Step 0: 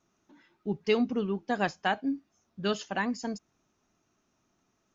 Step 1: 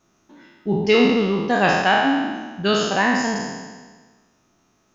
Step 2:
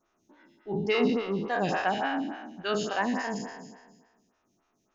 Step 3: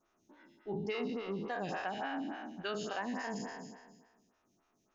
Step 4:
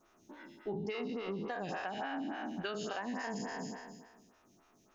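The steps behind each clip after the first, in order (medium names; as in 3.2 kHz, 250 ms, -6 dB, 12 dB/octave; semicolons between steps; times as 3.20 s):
spectral sustain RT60 1.42 s; trim +8 dB
lamp-driven phase shifter 3.5 Hz; trim -7 dB
compression 4:1, threshold -33 dBFS, peak gain reduction 11.5 dB; trim -2.5 dB
compression 5:1, threshold -45 dBFS, peak gain reduction 11.5 dB; trim +8.5 dB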